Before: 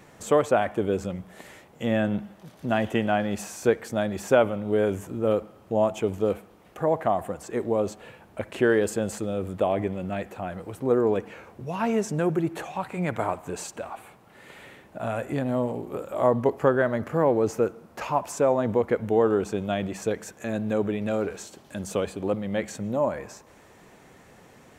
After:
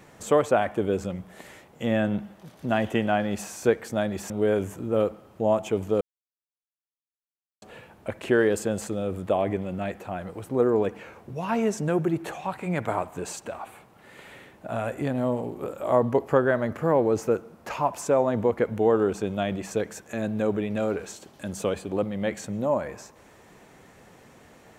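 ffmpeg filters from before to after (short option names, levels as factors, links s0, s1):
-filter_complex "[0:a]asplit=4[s0][s1][s2][s3];[s0]atrim=end=4.302[s4];[s1]atrim=start=4.608:end=6.32,asetpts=PTS-STARTPTS,afade=t=out:st=1.708:d=0.004:c=hsin[s5];[s2]atrim=start=6.32:end=7.93,asetpts=PTS-STARTPTS,volume=0[s6];[s3]atrim=start=7.93,asetpts=PTS-STARTPTS,afade=t=in:d=0.004:c=hsin[s7];[s5][s6][s7]concat=n=3:v=0:a=1[s8];[s4][s8]acrossfade=d=0.004:c1=hsin:c2=hsin"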